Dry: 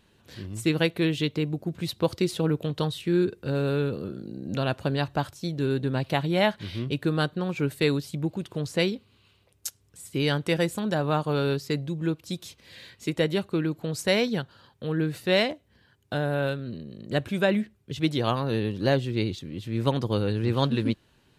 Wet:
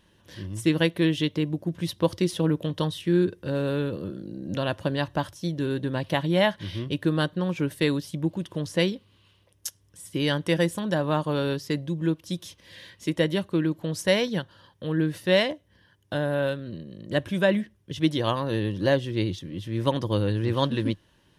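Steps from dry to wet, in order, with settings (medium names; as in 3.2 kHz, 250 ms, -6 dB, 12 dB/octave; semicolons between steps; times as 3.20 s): rippled EQ curve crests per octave 1.2, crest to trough 6 dB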